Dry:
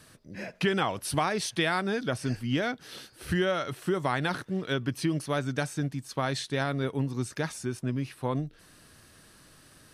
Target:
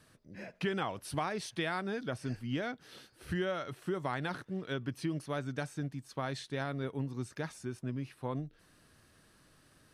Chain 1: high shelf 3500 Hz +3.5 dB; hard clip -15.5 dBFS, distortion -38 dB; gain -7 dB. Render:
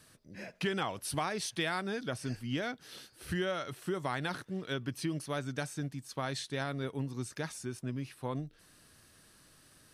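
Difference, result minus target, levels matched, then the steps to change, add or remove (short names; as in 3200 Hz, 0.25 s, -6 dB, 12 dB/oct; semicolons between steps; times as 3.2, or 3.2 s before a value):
8000 Hz band +6.5 dB
change: high shelf 3500 Hz -5 dB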